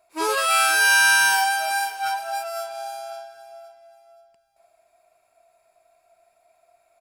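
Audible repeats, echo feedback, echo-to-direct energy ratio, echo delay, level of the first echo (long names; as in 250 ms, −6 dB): 2, 33%, −16.5 dB, 527 ms, −17.0 dB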